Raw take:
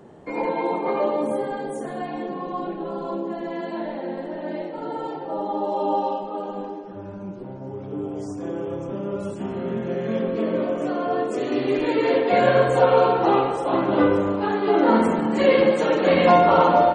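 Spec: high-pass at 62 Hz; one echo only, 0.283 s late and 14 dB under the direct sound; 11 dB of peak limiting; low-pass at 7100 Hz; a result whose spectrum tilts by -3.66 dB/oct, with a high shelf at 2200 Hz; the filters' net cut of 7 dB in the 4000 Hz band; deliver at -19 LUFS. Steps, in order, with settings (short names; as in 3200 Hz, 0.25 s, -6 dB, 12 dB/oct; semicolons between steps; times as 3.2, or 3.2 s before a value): HPF 62 Hz; LPF 7100 Hz; high shelf 2200 Hz -3.5 dB; bell 4000 Hz -6.5 dB; limiter -16 dBFS; echo 0.283 s -14 dB; gain +7.5 dB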